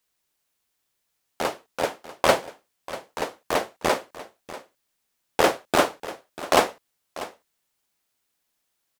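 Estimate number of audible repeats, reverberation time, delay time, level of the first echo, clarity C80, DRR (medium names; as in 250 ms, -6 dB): 1, no reverb, 642 ms, -16.0 dB, no reverb, no reverb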